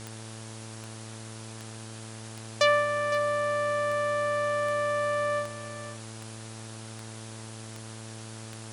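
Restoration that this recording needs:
click removal
hum removal 111.1 Hz, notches 16
broadband denoise 30 dB, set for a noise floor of −42 dBFS
echo removal 511 ms −13.5 dB

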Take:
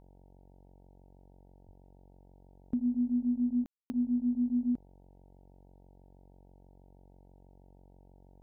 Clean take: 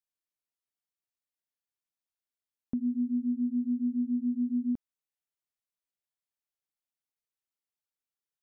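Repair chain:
hum removal 46.2 Hz, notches 20
0:01.65–0:01.77: high-pass filter 140 Hz 24 dB per octave
ambience match 0:03.66–0:03.90

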